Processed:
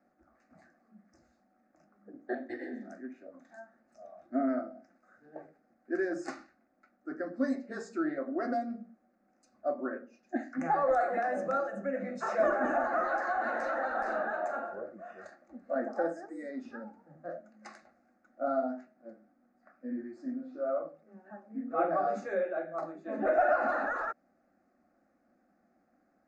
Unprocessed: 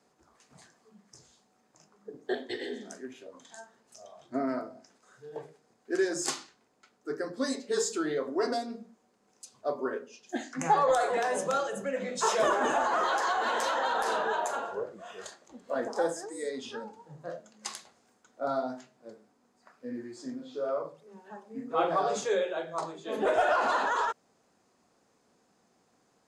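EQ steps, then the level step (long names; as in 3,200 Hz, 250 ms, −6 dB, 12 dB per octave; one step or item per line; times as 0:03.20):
head-to-tape spacing loss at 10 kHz 28 dB
high-shelf EQ 4,900 Hz −5.5 dB
phaser with its sweep stopped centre 650 Hz, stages 8
+3.0 dB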